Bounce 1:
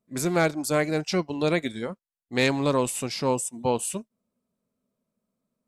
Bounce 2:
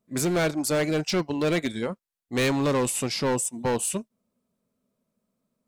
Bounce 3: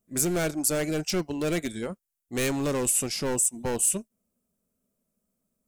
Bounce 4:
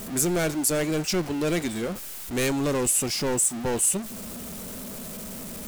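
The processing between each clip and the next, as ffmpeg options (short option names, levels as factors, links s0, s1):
-af "asoftclip=type=hard:threshold=0.0708,volume=1.41"
-af "equalizer=f=125:t=o:w=1:g=-10,equalizer=f=250:t=o:w=1:g=-7,equalizer=f=500:t=o:w=1:g=-7,equalizer=f=1000:t=o:w=1:g=-11,equalizer=f=2000:t=o:w=1:g=-7,equalizer=f=4000:t=o:w=1:g=-11,volume=2.24"
-af "aeval=exprs='val(0)+0.5*0.0299*sgn(val(0))':c=same"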